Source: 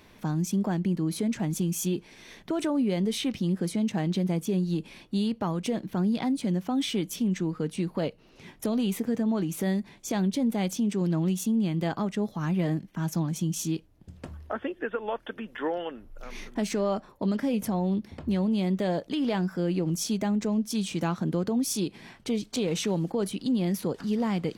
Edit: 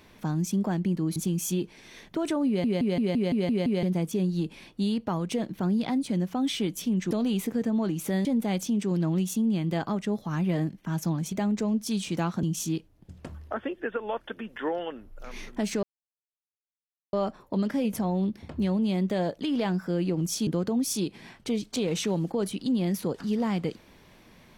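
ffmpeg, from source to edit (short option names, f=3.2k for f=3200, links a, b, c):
-filter_complex "[0:a]asplit=16[a][b][c][d][e][f][g][h][i][j][k][l][m][n][o][p];[a]atrim=end=1.162[q];[b]atrim=start=1.498:end=2.982[r];[c]atrim=start=2.808:end=2.982[s];[d]atrim=start=2.808:end=2.982[t];[e]atrim=start=2.808:end=2.982[u];[f]atrim=start=2.808:end=2.982[v];[g]atrim=start=2.808:end=2.982[w];[h]atrim=start=2.808:end=2.982[x];[i]atrim=start=2.808:end=2.982[y];[j]atrim=start=4.168:end=7.452[z];[k]atrim=start=8.638:end=9.782[aa];[l]atrim=start=10.348:end=13.422[ab];[m]atrim=start=20.158:end=21.272[ac];[n]atrim=start=13.418:end=16.82,asetpts=PTS-STARTPTS,afade=t=out:st=3.398:d=0.004:c=hsin,apad=pad_dur=1.3[ad];[o]atrim=start=16.82:end=20.162,asetpts=PTS-STARTPTS,afade=t=in:d=0.004:c=hsin[ae];[p]atrim=start=21.268[af];[q][r]acrossfade=d=0.004:c1=hsin:c2=hsin[ag];[ag][s]acrossfade=d=0.004:c1=hsin:c2=hsin[ah];[ah][t]acrossfade=d=0.004:c1=hsin:c2=hsin[ai];[ai][u]acrossfade=d=0.004:c1=hsin:c2=hsin[aj];[aj][v]acrossfade=d=0.004:c1=hsin:c2=hsin[ak];[ak][w]acrossfade=d=0.004:c1=hsin:c2=hsin[al];[al][x]acrossfade=d=0.004:c1=hsin:c2=hsin[am];[am][y]acrossfade=d=0.004:c1=hsin:c2=hsin[an];[an][z]acrossfade=d=0.004:c1=hsin:c2=hsin[ao];[ao][aa]acrossfade=d=0.004:c1=hsin:c2=hsin[ap];[ap][ab]acrossfade=d=0.004:c1=hsin:c2=hsin[aq];[aq][ac]acrossfade=d=0.004:c1=hsin:c2=hsin[ar];[ad][ae]concat=n=2:v=0:a=1[as];[ar][as]acrossfade=d=0.004:c1=hsin:c2=hsin[at];[at][af]acrossfade=d=0.004:c1=hsin:c2=hsin"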